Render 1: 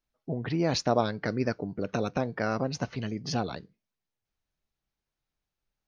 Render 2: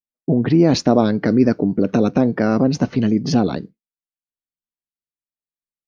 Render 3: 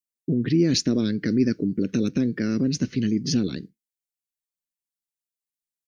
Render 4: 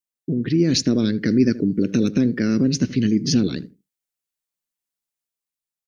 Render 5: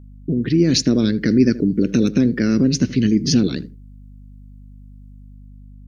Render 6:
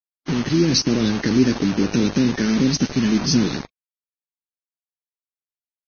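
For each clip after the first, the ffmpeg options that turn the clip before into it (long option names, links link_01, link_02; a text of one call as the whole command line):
ffmpeg -i in.wav -filter_complex "[0:a]agate=range=-33dB:threshold=-44dB:ratio=3:detection=peak,equalizer=frequency=260:width_type=o:width=1.9:gain=13,asplit=2[link_01][link_02];[link_02]alimiter=limit=-15dB:level=0:latency=1:release=13,volume=1.5dB[link_03];[link_01][link_03]amix=inputs=2:normalize=0" out.wav
ffmpeg -i in.wav -af "firequalizer=gain_entry='entry(360,0);entry(750,-24);entry(1700,1);entry(7400,10)':delay=0.05:min_phase=1,volume=-6dB" out.wav
ffmpeg -i in.wav -filter_complex "[0:a]asplit=2[link_01][link_02];[link_02]adelay=78,lowpass=frequency=1100:poles=1,volume=-15.5dB,asplit=2[link_03][link_04];[link_04]adelay=78,lowpass=frequency=1100:poles=1,volume=0.18[link_05];[link_01][link_03][link_05]amix=inputs=3:normalize=0,dynaudnorm=framelen=110:gausssize=13:maxgain=4.5dB" out.wav
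ffmpeg -i in.wav -af "aeval=exprs='val(0)+0.00794*(sin(2*PI*50*n/s)+sin(2*PI*2*50*n/s)/2+sin(2*PI*3*50*n/s)/3+sin(2*PI*4*50*n/s)/4+sin(2*PI*5*50*n/s)/5)':channel_layout=same,volume=2.5dB" out.wav
ffmpeg -i in.wav -af "flanger=delay=4:depth=3:regen=-78:speed=0.36:shape=triangular,acrusher=bits=4:mix=0:aa=0.000001,volume=2dB" -ar 16000 -c:a libvorbis -b:a 16k out.ogg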